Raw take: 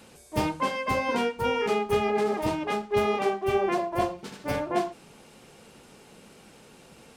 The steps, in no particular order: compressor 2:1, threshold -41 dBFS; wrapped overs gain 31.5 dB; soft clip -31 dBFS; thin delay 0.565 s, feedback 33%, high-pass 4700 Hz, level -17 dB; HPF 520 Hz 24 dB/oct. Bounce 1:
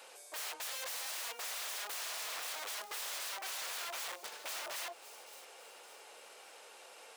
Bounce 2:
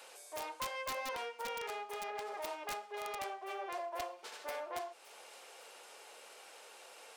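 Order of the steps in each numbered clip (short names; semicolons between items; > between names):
wrapped overs > thin delay > compressor > HPF > soft clip; thin delay > compressor > soft clip > HPF > wrapped overs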